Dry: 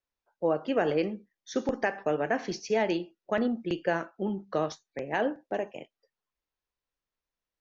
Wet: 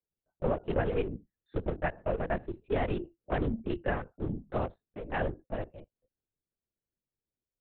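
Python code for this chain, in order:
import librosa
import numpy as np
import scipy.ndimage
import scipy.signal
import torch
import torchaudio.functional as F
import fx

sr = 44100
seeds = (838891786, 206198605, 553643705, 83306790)

y = fx.wiener(x, sr, points=41)
y = fx.lpc_vocoder(y, sr, seeds[0], excitation='whisper', order=8)
y = fx.band_squash(y, sr, depth_pct=40, at=(2.68, 4.15))
y = F.gain(torch.from_numpy(y), -2.0).numpy()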